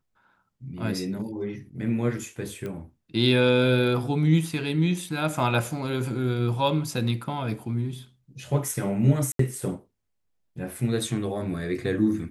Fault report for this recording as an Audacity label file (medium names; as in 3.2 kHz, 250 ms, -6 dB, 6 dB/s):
2.660000	2.660000	pop -22 dBFS
9.320000	9.390000	dropout 73 ms